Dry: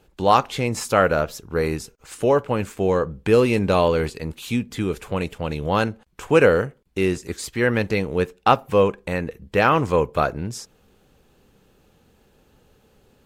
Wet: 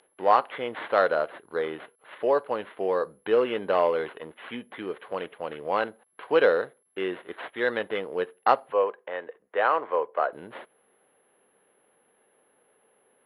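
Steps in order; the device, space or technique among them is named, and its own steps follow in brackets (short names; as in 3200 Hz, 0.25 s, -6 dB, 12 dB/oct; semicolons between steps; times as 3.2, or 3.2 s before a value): toy sound module (decimation joined by straight lines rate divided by 8×; pulse-width modulation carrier 11000 Hz; speaker cabinet 560–3800 Hz, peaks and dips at 860 Hz -3 dB, 1300 Hz -4 dB, 2500 Hz -7 dB); 8.72–10.33 three-band isolator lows -15 dB, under 370 Hz, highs -21 dB, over 2800 Hz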